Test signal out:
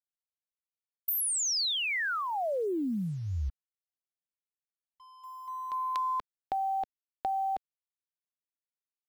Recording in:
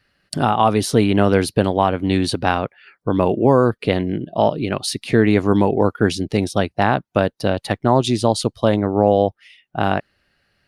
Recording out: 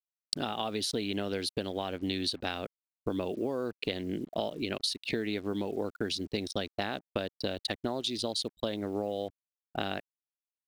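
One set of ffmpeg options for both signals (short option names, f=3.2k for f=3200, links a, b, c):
-af "anlmdn=63.1,equalizer=f=125:t=o:w=1:g=-12,equalizer=f=1k:t=o:w=1:g=-9,equalizer=f=4k:t=o:w=1:g=11,acompressor=threshold=-26dB:ratio=16,acrusher=bits=8:mix=0:aa=0.5,volume=-2.5dB"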